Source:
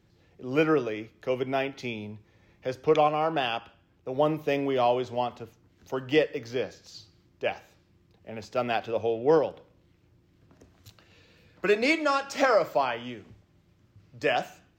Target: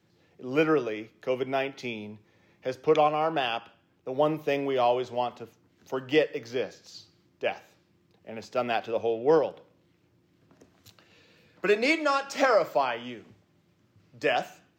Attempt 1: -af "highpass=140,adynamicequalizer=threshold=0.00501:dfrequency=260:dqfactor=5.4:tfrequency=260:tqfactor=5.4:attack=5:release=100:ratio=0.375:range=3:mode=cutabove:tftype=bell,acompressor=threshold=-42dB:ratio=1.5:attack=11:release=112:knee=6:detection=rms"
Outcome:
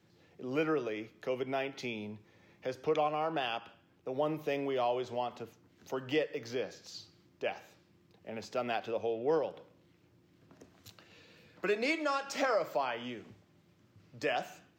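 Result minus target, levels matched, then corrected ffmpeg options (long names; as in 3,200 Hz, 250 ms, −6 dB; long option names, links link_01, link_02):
downward compressor: peak gain reduction +9.5 dB
-af "highpass=140,adynamicequalizer=threshold=0.00501:dfrequency=260:dqfactor=5.4:tfrequency=260:tqfactor=5.4:attack=5:release=100:ratio=0.375:range=3:mode=cutabove:tftype=bell"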